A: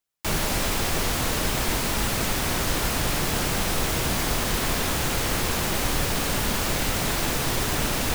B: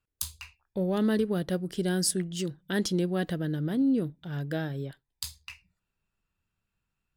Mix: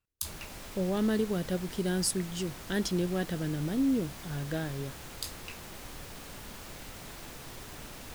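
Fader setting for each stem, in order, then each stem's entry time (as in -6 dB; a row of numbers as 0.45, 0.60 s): -20.0, -2.5 dB; 0.00, 0.00 s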